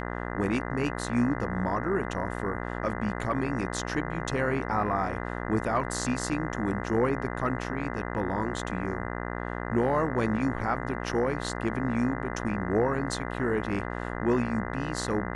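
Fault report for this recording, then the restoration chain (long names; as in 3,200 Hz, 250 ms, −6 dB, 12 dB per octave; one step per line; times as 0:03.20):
mains buzz 60 Hz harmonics 34 −34 dBFS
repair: hum removal 60 Hz, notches 34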